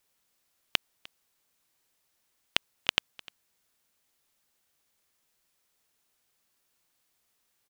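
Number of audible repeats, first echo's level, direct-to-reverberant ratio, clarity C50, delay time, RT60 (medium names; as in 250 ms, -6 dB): 1, -23.0 dB, no reverb, no reverb, 302 ms, no reverb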